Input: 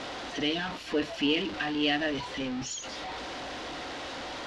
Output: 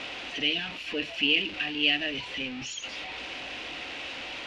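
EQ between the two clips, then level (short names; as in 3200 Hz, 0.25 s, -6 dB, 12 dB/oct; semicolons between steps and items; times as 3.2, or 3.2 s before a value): bell 2600 Hz +15 dB 0.71 oct; dynamic EQ 1100 Hz, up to -6 dB, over -38 dBFS, Q 1.2; -4.5 dB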